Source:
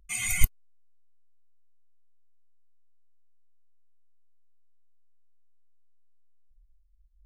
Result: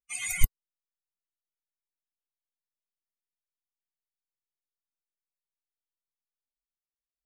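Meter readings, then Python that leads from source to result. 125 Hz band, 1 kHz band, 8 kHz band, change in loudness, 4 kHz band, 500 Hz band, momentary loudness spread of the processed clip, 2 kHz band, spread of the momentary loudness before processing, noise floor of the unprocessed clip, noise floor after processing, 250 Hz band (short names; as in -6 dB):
-2.0 dB, -3.0 dB, -3.0 dB, -2.5 dB, -3.0 dB, -3.0 dB, 3 LU, -3.0 dB, 3 LU, -61 dBFS, under -85 dBFS, -2.5 dB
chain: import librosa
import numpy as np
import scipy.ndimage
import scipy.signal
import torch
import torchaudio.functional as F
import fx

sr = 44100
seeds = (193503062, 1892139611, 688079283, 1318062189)

y = fx.bin_expand(x, sr, power=2.0)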